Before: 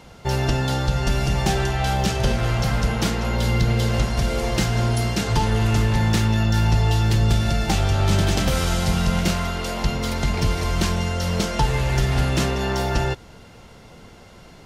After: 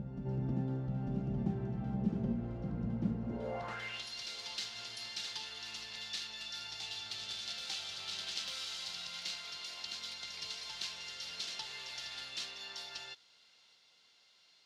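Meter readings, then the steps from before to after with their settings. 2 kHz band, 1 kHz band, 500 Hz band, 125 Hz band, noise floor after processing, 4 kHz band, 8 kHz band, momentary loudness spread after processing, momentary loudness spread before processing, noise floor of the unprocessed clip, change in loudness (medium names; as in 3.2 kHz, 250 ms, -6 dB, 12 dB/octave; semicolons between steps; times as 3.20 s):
-18.0 dB, -24.0 dB, -21.5 dB, -22.0 dB, -67 dBFS, -10.0 dB, -16.5 dB, 6 LU, 4 LU, -45 dBFS, -18.0 dB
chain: reverse echo 897 ms -4.5 dB; band-pass sweep 210 Hz -> 4.1 kHz, 3.24–4.04 s; trim -7.5 dB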